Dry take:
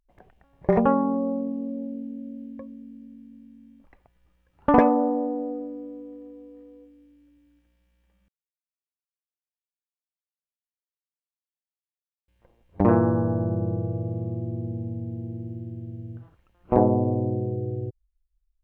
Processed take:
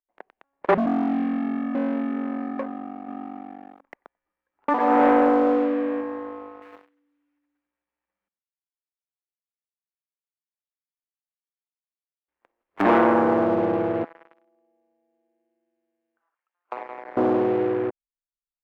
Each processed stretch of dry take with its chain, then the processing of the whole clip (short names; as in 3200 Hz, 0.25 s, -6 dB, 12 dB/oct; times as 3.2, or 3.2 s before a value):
0.74–1.75 G.711 law mismatch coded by A + inverse Chebyshev low-pass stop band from 510 Hz
3.07–6.01 negative-ratio compressor -23 dBFS, ratio -0.5 + echo 91 ms -14 dB
6.62–12.84 block floating point 3-bit + echo 0.106 s -16 dB
14.04–17.17 HPF 940 Hz + compressor 8:1, threshold -42 dBFS
whole clip: ten-band EQ 125 Hz -6 dB, 250 Hz +3 dB, 500 Hz -3 dB, 1000 Hz +3 dB, 2000 Hz +3 dB; sample leveller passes 5; three-band isolator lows -22 dB, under 290 Hz, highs -22 dB, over 2400 Hz; gain -3.5 dB